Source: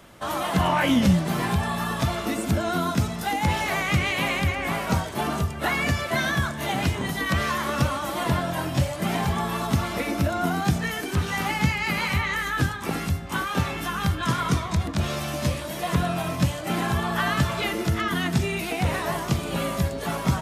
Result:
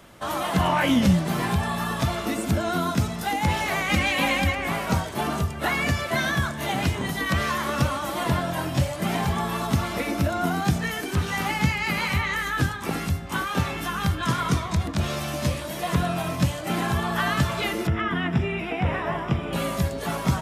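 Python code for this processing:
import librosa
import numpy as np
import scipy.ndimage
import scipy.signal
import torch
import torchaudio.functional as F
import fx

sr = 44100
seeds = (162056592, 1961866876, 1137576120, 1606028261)

y = fx.comb(x, sr, ms=3.8, depth=0.86, at=(3.89, 4.55))
y = fx.savgol(y, sr, points=25, at=(17.87, 19.53))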